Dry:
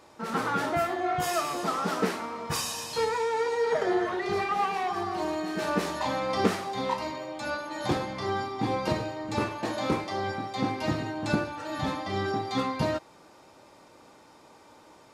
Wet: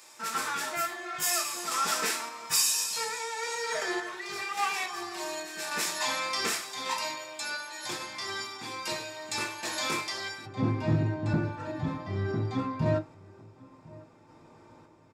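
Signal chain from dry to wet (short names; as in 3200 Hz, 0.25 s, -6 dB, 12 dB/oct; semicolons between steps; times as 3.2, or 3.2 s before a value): tilt +3.5 dB/oct, from 10.45 s -4 dB/oct; soft clip -11 dBFS, distortion -19 dB; random-step tremolo; outdoor echo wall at 180 m, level -22 dB; reverb RT60 0.20 s, pre-delay 3 ms, DRR 5.5 dB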